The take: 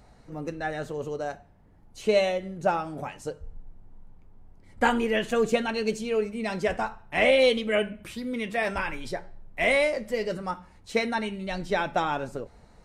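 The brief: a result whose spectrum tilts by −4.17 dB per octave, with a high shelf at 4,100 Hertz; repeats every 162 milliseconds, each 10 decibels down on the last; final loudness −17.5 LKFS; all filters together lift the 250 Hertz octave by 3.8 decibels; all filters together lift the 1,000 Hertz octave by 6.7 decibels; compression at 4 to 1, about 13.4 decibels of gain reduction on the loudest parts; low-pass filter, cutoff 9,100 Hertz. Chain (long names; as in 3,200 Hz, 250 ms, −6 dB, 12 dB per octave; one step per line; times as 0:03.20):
low-pass filter 9,100 Hz
parametric band 250 Hz +4 dB
parametric band 1,000 Hz +9 dB
high-shelf EQ 4,100 Hz −4.5 dB
downward compressor 4 to 1, threshold −30 dBFS
repeating echo 162 ms, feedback 32%, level −10 dB
level +16 dB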